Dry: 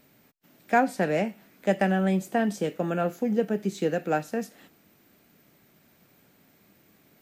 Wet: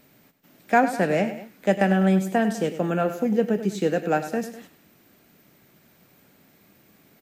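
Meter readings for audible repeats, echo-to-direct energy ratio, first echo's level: 2, −11.0 dB, −12.0 dB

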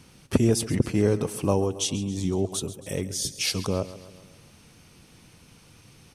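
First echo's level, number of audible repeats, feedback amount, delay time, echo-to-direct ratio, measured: −15.5 dB, 4, 54%, 136 ms, −14.0 dB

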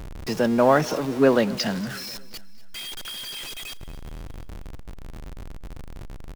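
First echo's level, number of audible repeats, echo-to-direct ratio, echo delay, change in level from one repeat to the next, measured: −19.5 dB, 3, −18.5 dB, 238 ms, −6.0 dB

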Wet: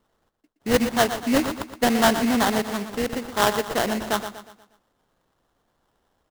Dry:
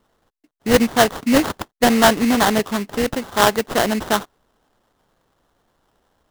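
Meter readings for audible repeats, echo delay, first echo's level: 4, 120 ms, −10.0 dB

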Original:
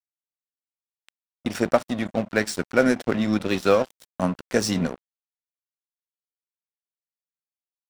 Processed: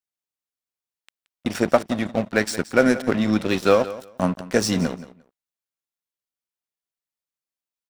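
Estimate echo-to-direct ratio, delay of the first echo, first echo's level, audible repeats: −16.0 dB, 175 ms, −16.0 dB, 2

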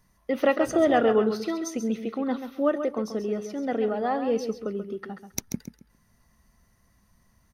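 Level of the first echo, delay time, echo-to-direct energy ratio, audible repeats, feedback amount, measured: −9.0 dB, 135 ms, −9.0 dB, 2, 21%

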